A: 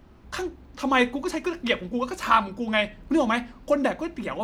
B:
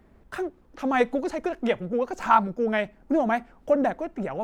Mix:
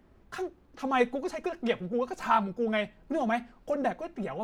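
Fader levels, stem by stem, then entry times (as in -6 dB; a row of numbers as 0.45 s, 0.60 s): -12.5 dB, -5.5 dB; 0.00 s, 0.00 s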